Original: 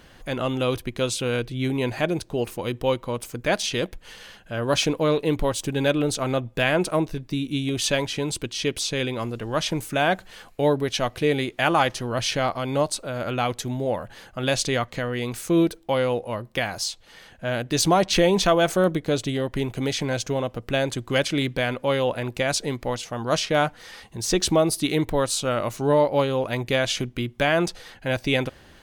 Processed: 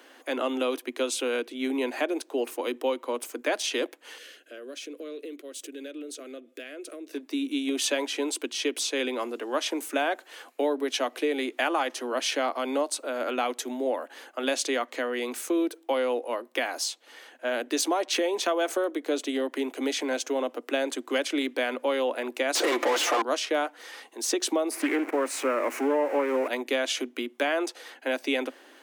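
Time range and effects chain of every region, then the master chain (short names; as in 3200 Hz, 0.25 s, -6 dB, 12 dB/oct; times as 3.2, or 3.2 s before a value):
4.18–7.13 compressor 10:1, threshold -33 dBFS + fixed phaser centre 370 Hz, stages 4
22.55–23.22 comb 5.8 ms, depth 56% + overdrive pedal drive 34 dB, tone 3500 Hz, clips at -11.5 dBFS
24.71–26.48 zero-crossing step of -27 dBFS + resonant high shelf 2800 Hz -6.5 dB, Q 3 + Doppler distortion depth 0.31 ms
whole clip: bell 4500 Hz -3.5 dB 0.77 oct; compressor, threshold -22 dBFS; steep high-pass 250 Hz 96 dB/oct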